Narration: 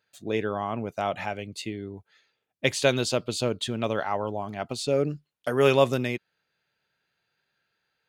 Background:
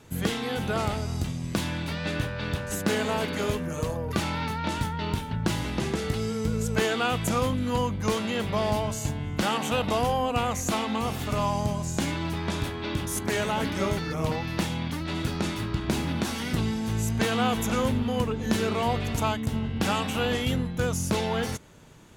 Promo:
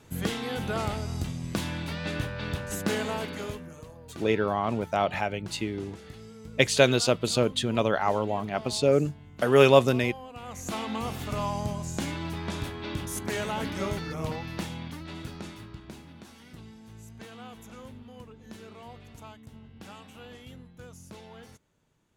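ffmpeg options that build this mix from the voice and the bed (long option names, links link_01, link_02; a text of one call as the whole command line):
ffmpeg -i stem1.wav -i stem2.wav -filter_complex "[0:a]adelay=3950,volume=2.5dB[link_01];[1:a]volume=10.5dB,afade=type=out:start_time=2.94:duration=0.9:silence=0.188365,afade=type=in:start_time=10.4:duration=0.47:silence=0.223872,afade=type=out:start_time=14.05:duration=1.99:silence=0.158489[link_02];[link_01][link_02]amix=inputs=2:normalize=0" out.wav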